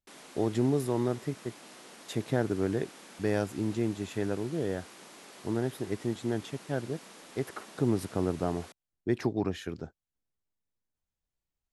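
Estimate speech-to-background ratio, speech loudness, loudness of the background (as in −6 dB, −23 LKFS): 17.0 dB, −32.5 LKFS, −49.5 LKFS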